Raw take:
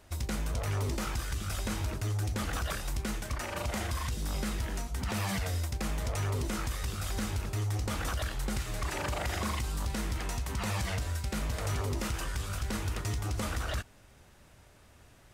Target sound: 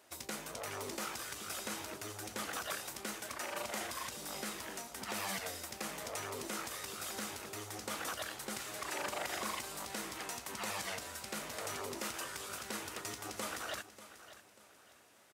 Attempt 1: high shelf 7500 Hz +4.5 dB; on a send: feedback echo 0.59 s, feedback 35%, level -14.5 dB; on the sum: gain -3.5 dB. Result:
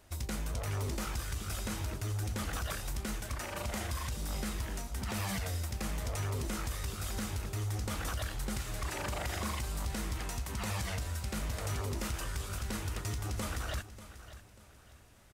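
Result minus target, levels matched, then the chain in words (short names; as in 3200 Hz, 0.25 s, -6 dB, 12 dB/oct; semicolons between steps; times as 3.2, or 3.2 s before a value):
250 Hz band +3.0 dB
HPF 320 Hz 12 dB/oct; high shelf 7500 Hz +4.5 dB; on a send: feedback echo 0.59 s, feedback 35%, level -14.5 dB; on the sum: gain -3.5 dB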